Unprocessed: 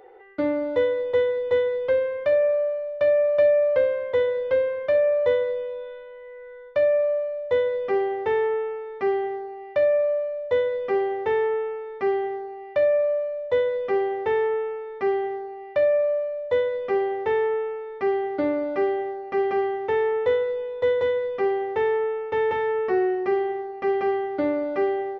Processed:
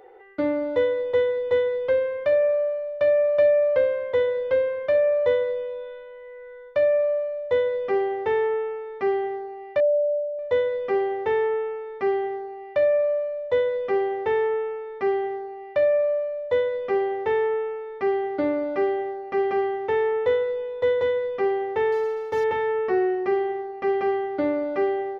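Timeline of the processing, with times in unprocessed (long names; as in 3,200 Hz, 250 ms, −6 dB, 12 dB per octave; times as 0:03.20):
0:09.80–0:10.39: expanding power law on the bin magnitudes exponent 2.7
0:21.92–0:22.44: running median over 15 samples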